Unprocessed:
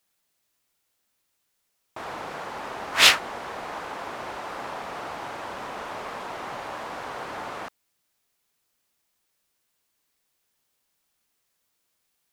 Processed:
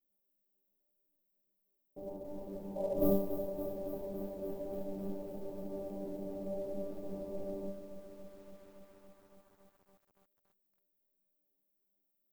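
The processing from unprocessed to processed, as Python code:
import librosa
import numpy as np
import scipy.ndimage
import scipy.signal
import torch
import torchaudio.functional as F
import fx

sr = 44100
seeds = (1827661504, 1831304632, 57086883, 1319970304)

p1 = x * np.sin(2.0 * np.pi * 1400.0 * np.arange(len(x)) / sr)
p2 = scipy.signal.sosfilt(scipy.signal.cheby2(4, 80, [2200.0, 5900.0], 'bandstop', fs=sr, output='sos'), p1)
p3 = fx.resonator_bank(p2, sr, root=55, chord='fifth', decay_s=0.52)
p4 = p3 + fx.echo_feedback(p3, sr, ms=124, feedback_pct=47, wet_db=-17.0, dry=0)
p5 = fx.spec_repair(p4, sr, seeds[0], start_s=2.79, length_s=0.31, low_hz=420.0, high_hz=1000.0, source='after')
p6 = fx.quant_float(p5, sr, bits=2)
p7 = p5 + F.gain(torch.from_numpy(p6), -10.5).numpy()
p8 = fx.echo_crushed(p7, sr, ms=282, feedback_pct=80, bits=13, wet_db=-11)
y = F.gain(torch.from_numpy(p8), 17.0).numpy()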